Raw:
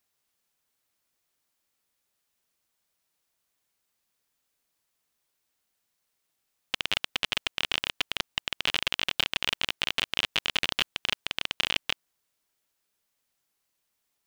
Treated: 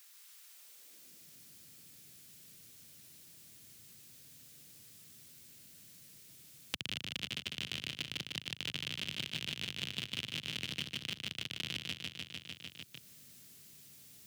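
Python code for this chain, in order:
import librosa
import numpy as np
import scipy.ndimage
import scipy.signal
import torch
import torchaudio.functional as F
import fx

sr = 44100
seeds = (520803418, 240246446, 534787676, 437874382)

y = scipy.signal.sosfilt(scipy.signal.butter(2, 71.0, 'highpass', fs=sr, output='sos'), x)
y = fx.tone_stack(y, sr, knobs='10-0-1')
y = fx.filter_sweep_highpass(y, sr, from_hz=1100.0, to_hz=130.0, start_s=0.45, end_s=1.31, q=1.5)
y = fx.echo_feedback(y, sr, ms=150, feedback_pct=55, wet_db=-4.0)
y = fx.band_squash(y, sr, depth_pct=100)
y = F.gain(torch.from_numpy(y), 10.5).numpy()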